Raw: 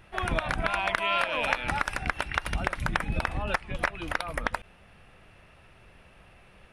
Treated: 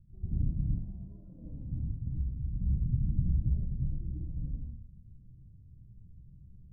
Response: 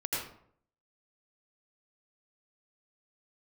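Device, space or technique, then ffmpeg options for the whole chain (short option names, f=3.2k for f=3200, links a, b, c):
club heard from the street: -filter_complex "[0:a]alimiter=limit=-18dB:level=0:latency=1:release=29,lowpass=f=190:w=0.5412,lowpass=f=190:w=1.3066[a];[1:a]atrim=start_sample=2205[b];[a][b]afir=irnorm=-1:irlink=0"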